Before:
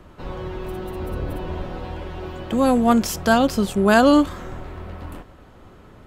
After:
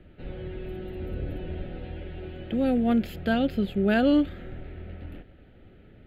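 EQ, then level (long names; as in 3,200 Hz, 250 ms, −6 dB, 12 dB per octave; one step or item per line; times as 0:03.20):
moving average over 5 samples
phaser with its sweep stopped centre 2,500 Hz, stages 4
−4.5 dB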